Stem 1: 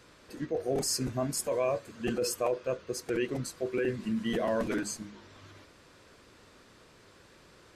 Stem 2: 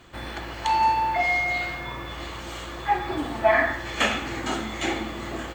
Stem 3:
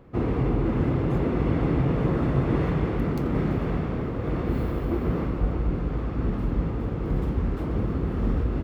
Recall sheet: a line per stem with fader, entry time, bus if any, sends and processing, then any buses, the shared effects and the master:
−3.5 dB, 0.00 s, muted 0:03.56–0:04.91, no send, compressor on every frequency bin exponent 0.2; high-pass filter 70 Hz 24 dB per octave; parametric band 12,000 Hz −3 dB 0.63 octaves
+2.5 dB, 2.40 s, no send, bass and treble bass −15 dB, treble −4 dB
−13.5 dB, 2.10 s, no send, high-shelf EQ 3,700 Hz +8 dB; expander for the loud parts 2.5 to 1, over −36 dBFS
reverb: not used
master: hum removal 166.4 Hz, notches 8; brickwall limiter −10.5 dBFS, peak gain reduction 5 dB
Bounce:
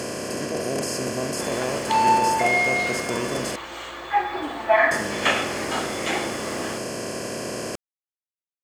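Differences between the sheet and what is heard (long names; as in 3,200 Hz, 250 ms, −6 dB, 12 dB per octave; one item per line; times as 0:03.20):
stem 2: entry 2.40 s → 1.25 s
stem 3: muted
master: missing brickwall limiter −10.5 dBFS, peak gain reduction 5 dB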